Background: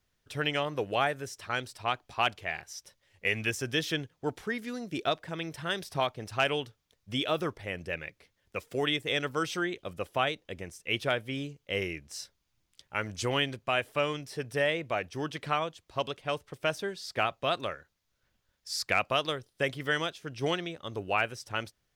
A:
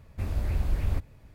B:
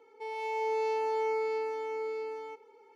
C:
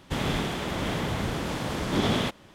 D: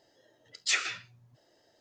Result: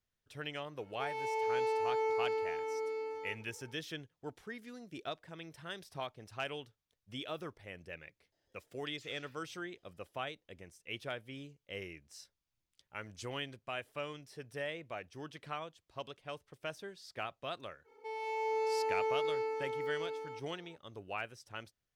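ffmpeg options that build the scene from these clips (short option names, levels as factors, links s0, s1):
-filter_complex "[2:a]asplit=2[s0][s1];[0:a]volume=0.251[s2];[4:a]acompressor=threshold=0.01:ratio=6:attack=3.2:release=140:knee=1:detection=peak[s3];[s0]atrim=end=2.95,asetpts=PTS-STARTPTS,volume=0.75,afade=t=in:d=0.004:c=hsin,afade=t=out:st=2.946:d=0.004:c=hsin,adelay=790[s4];[s3]atrim=end=1.8,asetpts=PTS-STARTPTS,volume=0.158,afade=t=in:d=0.004:c=hsin,afade=t=out:st=1.796:d=0.004:c=hsin,adelay=8320[s5];[s1]atrim=end=2.95,asetpts=PTS-STARTPTS,volume=0.708,afade=t=in:d=0.05,afade=t=out:st=2.9:d=0.05,adelay=17840[s6];[s2][s4][s5][s6]amix=inputs=4:normalize=0"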